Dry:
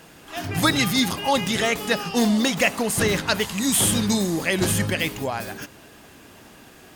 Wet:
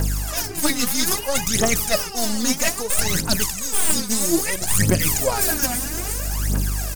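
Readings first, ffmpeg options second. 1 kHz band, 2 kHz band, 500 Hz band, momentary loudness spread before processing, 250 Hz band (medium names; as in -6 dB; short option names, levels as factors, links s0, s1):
-1.5 dB, -2.0 dB, -0.5 dB, 11 LU, -2.5 dB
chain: -filter_complex "[0:a]highpass=63,asplit=6[s0][s1][s2][s3][s4][s5];[s1]adelay=351,afreqshift=-71,volume=0.119[s6];[s2]adelay=702,afreqshift=-142,volume=0.0716[s7];[s3]adelay=1053,afreqshift=-213,volume=0.0427[s8];[s4]adelay=1404,afreqshift=-284,volume=0.0257[s9];[s5]adelay=1755,afreqshift=-355,volume=0.0155[s10];[s0][s6][s7][s8][s9][s10]amix=inputs=6:normalize=0,aeval=exprs='val(0)+0.0112*(sin(2*PI*50*n/s)+sin(2*PI*2*50*n/s)/2+sin(2*PI*3*50*n/s)/3+sin(2*PI*4*50*n/s)/4+sin(2*PI*5*50*n/s)/5)':c=same,aexciter=amount=7.8:drive=5.2:freq=4800,asplit=2[s11][s12];[s12]acrusher=bits=2:mode=log:mix=0:aa=0.000001,volume=0.668[s13];[s11][s13]amix=inputs=2:normalize=0,highshelf=f=4700:g=-9,aeval=exprs='2.37*(cos(1*acos(clip(val(0)/2.37,-1,1)))-cos(1*PI/2))+0.944*(cos(4*acos(clip(val(0)/2.37,-1,1)))-cos(4*PI/2))':c=same,areverse,acompressor=threshold=0.0631:ratio=16,areverse,aphaser=in_gain=1:out_gain=1:delay=4.2:decay=0.74:speed=0.61:type=triangular,volume=1.68"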